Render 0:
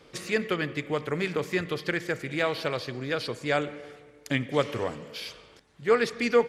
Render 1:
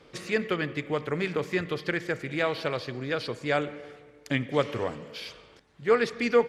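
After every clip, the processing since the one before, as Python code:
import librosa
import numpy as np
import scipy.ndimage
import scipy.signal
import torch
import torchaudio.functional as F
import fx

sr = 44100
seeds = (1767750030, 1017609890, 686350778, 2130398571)

y = fx.high_shelf(x, sr, hz=6900.0, db=-8.5)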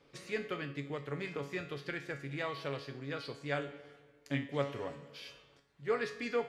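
y = fx.comb_fb(x, sr, f0_hz=140.0, decay_s=0.44, harmonics='all', damping=0.0, mix_pct=80)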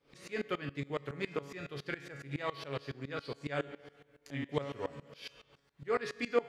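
y = fx.tremolo_decay(x, sr, direction='swelling', hz=7.2, depth_db=21)
y = y * 10.0 ** (7.0 / 20.0)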